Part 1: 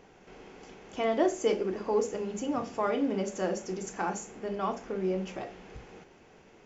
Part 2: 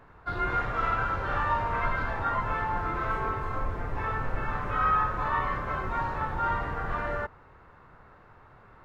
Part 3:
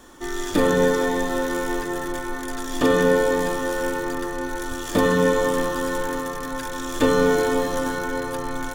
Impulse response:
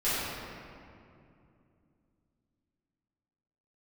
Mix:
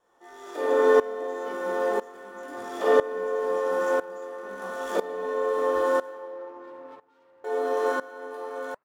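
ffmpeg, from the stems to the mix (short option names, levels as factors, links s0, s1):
-filter_complex "[0:a]flanger=delay=19.5:depth=6.1:speed=0.68,volume=0.631[s0];[1:a]asoftclip=type=hard:threshold=0.0316,highpass=230,adelay=700,volume=0.188[s1];[2:a]highpass=f=340:w=0.5412,highpass=f=340:w=1.3066,equalizer=f=710:t=o:w=2.1:g=14,volume=0.251,asplit=3[s2][s3][s4];[s2]atrim=end=6.09,asetpts=PTS-STARTPTS,afade=t=out:st=6.086:d=0.004:c=hsin[s5];[s3]atrim=start=6.09:end=7.44,asetpts=PTS-STARTPTS,volume=0[s6];[s4]atrim=start=7.44,asetpts=PTS-STARTPTS,afade=t=in:d=0.004:c=hsin[s7];[s5][s6][s7]concat=n=3:v=0:a=1,asplit=2[s8][s9];[s9]volume=0.447[s10];[s1][s8]amix=inputs=2:normalize=0,flanger=delay=0.7:depth=6.3:regen=72:speed=1.9:shape=triangular,acompressor=threshold=0.0251:ratio=6,volume=1[s11];[3:a]atrim=start_sample=2205[s12];[s10][s12]afir=irnorm=-1:irlink=0[s13];[s0][s11][s13]amix=inputs=3:normalize=0,aeval=exprs='val(0)*pow(10,-19*if(lt(mod(-1*n/s,1),2*abs(-1)/1000),1-mod(-1*n/s,1)/(2*abs(-1)/1000),(mod(-1*n/s,1)-2*abs(-1)/1000)/(1-2*abs(-1)/1000))/20)':c=same"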